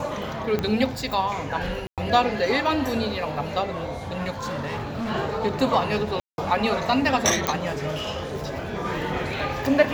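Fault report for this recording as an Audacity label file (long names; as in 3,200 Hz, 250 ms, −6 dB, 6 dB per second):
0.590000	0.590000	click −12 dBFS
1.870000	1.980000	drop-out 107 ms
4.390000	5.110000	clipping −25.5 dBFS
6.200000	6.380000	drop-out 181 ms
7.470000	7.470000	click −6 dBFS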